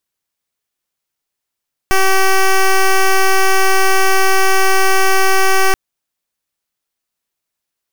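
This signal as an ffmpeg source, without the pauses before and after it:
ffmpeg -f lavfi -i "aevalsrc='0.316*(2*lt(mod(383*t,1),0.1)-1)':duration=3.83:sample_rate=44100" out.wav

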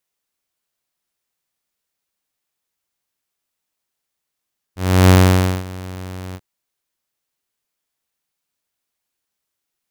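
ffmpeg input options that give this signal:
ffmpeg -f lavfi -i "aevalsrc='0.668*(2*mod(92.5*t,1)-1)':duration=1.639:sample_rate=44100,afade=type=in:duration=0.334,afade=type=out:start_time=0.334:duration=0.537:silence=0.0794,afade=type=out:start_time=1.59:duration=0.049" out.wav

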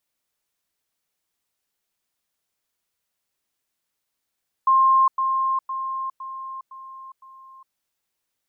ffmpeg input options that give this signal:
ffmpeg -f lavfi -i "aevalsrc='pow(10,(-13-6*floor(t/0.51))/20)*sin(2*PI*1060*t)*clip(min(mod(t,0.51),0.41-mod(t,0.51))/0.005,0,1)':duration=3.06:sample_rate=44100" out.wav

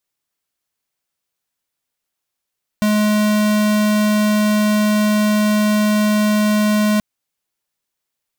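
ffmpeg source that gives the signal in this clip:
ffmpeg -f lavfi -i "aevalsrc='0.178*(2*lt(mod(211*t,1),0.5)-1)':duration=4.18:sample_rate=44100" out.wav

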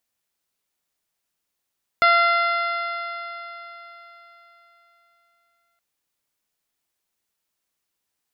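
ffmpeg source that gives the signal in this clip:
ffmpeg -f lavfi -i "aevalsrc='0.106*pow(10,-3*t/3.9)*sin(2*PI*684.51*t)+0.2*pow(10,-3*t/3.9)*sin(2*PI*1372.1*t)+0.119*pow(10,-3*t/3.9)*sin(2*PI*2065.8*t)+0.0266*pow(10,-3*t/3.9)*sin(2*PI*2768.64*t)+0.0335*pow(10,-3*t/3.9)*sin(2*PI*3483.53*t)+0.0282*pow(10,-3*t/3.9)*sin(2*PI*4213.35*t)+0.0158*pow(10,-3*t/3.9)*sin(2*PI*4960.84*t)':duration=3.77:sample_rate=44100" out.wav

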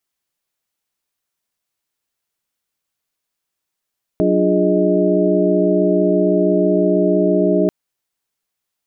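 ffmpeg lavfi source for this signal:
ffmpeg -f lavfi -i "aevalsrc='0.119*(sin(2*PI*185*t)+sin(2*PI*293.66*t)+sin(2*PI*349.23*t)+sin(2*PI*415.3*t)+sin(2*PI*622.25*t))':duration=3.49:sample_rate=44100" out.wav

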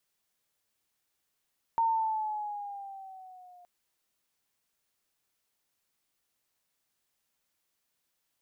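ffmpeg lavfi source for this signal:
ffmpeg -f lavfi -i "aevalsrc='pow(10,(-22.5-29.5*t/1.87)/20)*sin(2*PI*918*1.87/(-4.5*log(2)/12)*(exp(-4.5*log(2)/12*t/1.87)-1))':duration=1.87:sample_rate=44100" out.wav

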